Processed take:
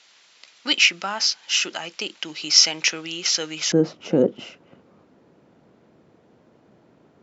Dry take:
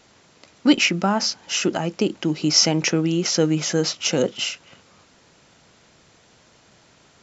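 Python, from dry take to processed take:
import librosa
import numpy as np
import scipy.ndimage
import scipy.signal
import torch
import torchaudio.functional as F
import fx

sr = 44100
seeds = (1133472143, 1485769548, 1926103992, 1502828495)

y = fx.bandpass_q(x, sr, hz=fx.steps((0.0, 3500.0), (3.72, 300.0)), q=0.92)
y = F.gain(torch.from_numpy(y), 5.0).numpy()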